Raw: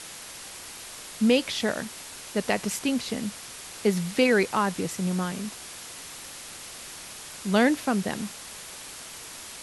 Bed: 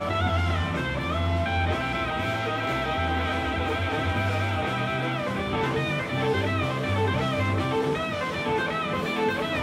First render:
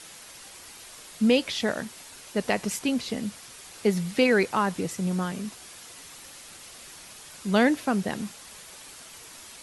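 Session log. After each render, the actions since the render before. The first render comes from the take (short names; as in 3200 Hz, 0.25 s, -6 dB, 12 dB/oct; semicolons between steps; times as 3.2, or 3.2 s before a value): denoiser 6 dB, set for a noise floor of -42 dBFS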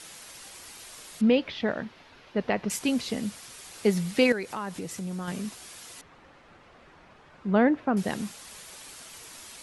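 1.21–2.7 air absorption 290 m; 4.32–5.28 compressor 2.5:1, threshold -34 dBFS; 6.01–7.97 LPF 1500 Hz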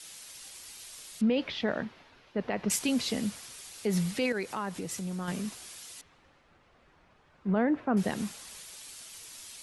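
limiter -21 dBFS, peak gain reduction 10.5 dB; three-band expander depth 40%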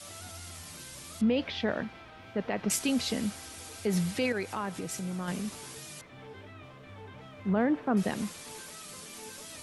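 add bed -23 dB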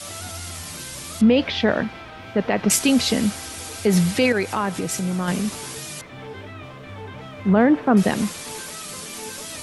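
gain +11 dB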